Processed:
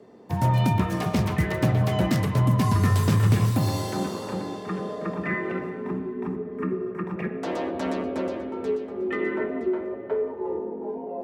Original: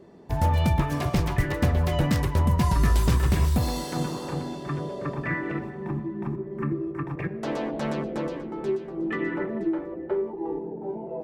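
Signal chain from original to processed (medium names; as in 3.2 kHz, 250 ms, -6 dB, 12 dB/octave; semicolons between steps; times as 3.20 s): frequency shift +41 Hz; spring tank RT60 2.2 s, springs 46/56 ms, chirp 60 ms, DRR 9 dB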